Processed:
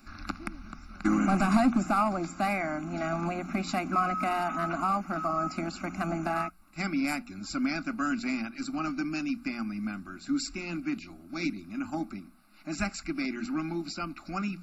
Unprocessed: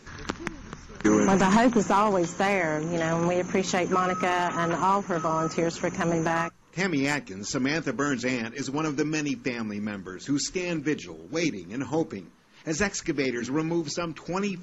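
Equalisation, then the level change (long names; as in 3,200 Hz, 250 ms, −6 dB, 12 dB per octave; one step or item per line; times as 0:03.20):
high-shelf EQ 3,400 Hz +9 dB
phaser with its sweep stopped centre 650 Hz, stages 8
phaser with its sweep stopped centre 1,800 Hz, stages 6
+2.5 dB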